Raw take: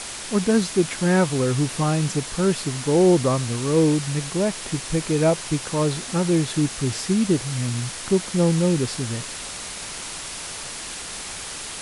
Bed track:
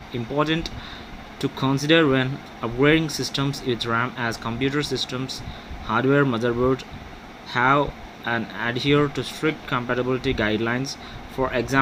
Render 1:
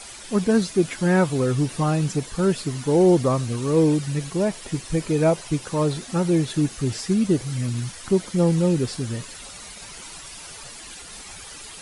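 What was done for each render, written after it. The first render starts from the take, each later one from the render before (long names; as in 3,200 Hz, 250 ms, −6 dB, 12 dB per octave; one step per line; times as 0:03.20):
broadband denoise 11 dB, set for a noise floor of −34 dBFS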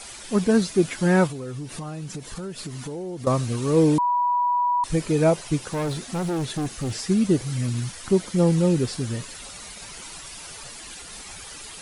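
0:01.27–0:03.27: downward compressor 8 to 1, threshold −30 dBFS
0:03.98–0:04.84: beep over 976 Hz −18.5 dBFS
0:05.69–0:06.95: gain into a clipping stage and back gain 23.5 dB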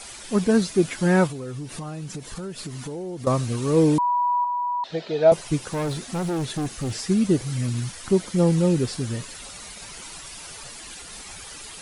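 0:04.44–0:05.32: loudspeaker in its box 290–4,400 Hz, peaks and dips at 300 Hz −8 dB, 680 Hz +8 dB, 1,100 Hz −9 dB, 2,300 Hz −6 dB, 3,800 Hz +6 dB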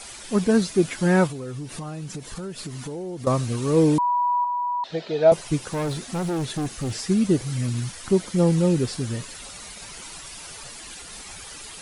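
no processing that can be heard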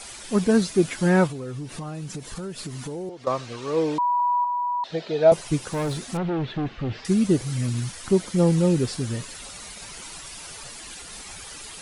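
0:01.09–0:01.95: high-shelf EQ 6,700 Hz −5 dB
0:03.09–0:04.20: three-way crossover with the lows and the highs turned down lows −14 dB, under 410 Hz, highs −23 dB, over 5,900 Hz
0:06.17–0:07.05: low-pass filter 3,400 Hz 24 dB per octave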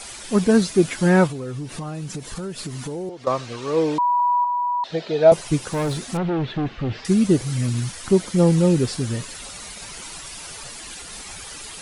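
level +3 dB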